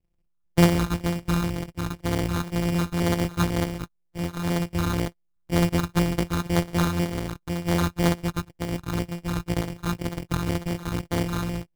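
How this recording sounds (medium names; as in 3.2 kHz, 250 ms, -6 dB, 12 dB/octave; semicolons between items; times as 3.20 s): a buzz of ramps at a fixed pitch in blocks of 256 samples; phasing stages 8, 2 Hz, lowest notch 590–2000 Hz; aliases and images of a low sample rate 2.6 kHz, jitter 0%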